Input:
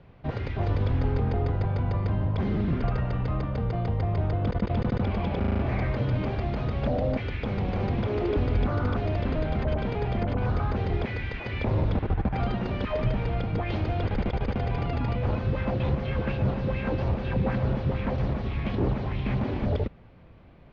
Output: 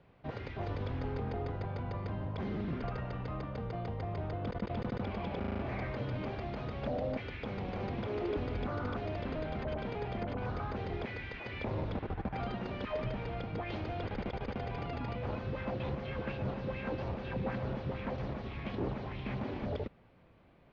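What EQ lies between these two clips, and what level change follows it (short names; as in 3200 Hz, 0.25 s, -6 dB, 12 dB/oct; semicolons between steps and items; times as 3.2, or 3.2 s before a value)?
low shelf 140 Hz -9.5 dB; -6.5 dB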